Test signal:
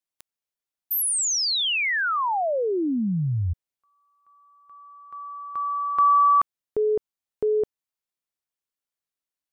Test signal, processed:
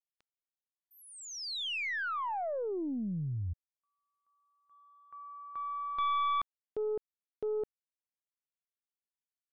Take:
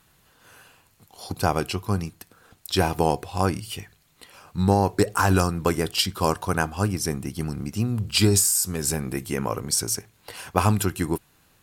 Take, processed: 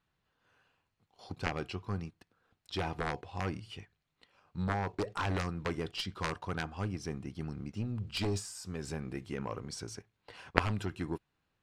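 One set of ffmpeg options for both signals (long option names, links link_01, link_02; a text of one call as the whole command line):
ffmpeg -i in.wav -af "agate=range=-8dB:threshold=-50dB:ratio=16:release=21:detection=peak,lowpass=3900,aeval=exprs='0.75*(cos(1*acos(clip(val(0)/0.75,-1,1)))-cos(1*PI/2))+0.0473*(cos(2*acos(clip(val(0)/0.75,-1,1)))-cos(2*PI/2))+0.335*(cos(3*acos(clip(val(0)/0.75,-1,1)))-cos(3*PI/2))+0.00473*(cos(6*acos(clip(val(0)/0.75,-1,1)))-cos(6*PI/2))':channel_layout=same,volume=-1dB" out.wav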